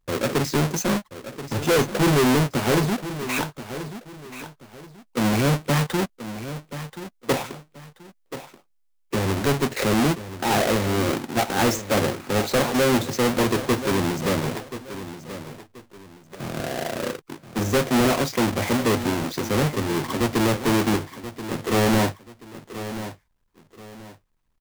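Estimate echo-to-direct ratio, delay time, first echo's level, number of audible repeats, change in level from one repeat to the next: −12.0 dB, 1,031 ms, −12.5 dB, 2, −10.5 dB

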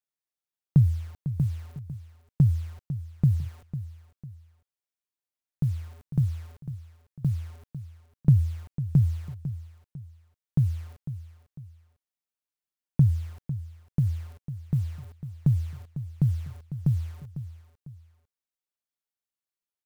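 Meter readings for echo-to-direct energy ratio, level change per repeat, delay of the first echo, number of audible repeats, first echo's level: −12.0 dB, −8.5 dB, 500 ms, 2, −12.5 dB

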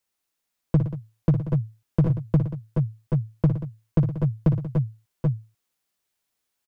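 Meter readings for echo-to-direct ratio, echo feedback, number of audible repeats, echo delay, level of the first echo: −2.0 dB, repeats not evenly spaced, 4, 59 ms, −9.0 dB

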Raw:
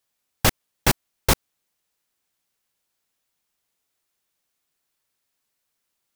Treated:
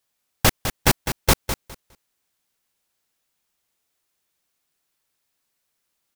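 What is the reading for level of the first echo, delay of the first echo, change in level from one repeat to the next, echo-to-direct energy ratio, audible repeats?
−9.5 dB, 205 ms, −15.0 dB, −9.5 dB, 2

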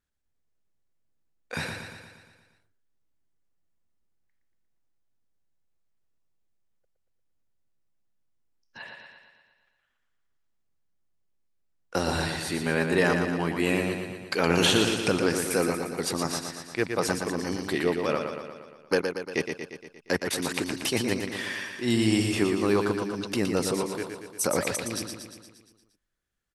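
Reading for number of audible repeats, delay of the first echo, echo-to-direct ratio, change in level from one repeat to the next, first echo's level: 7, 117 ms, −4.0 dB, −4.5 dB, −6.0 dB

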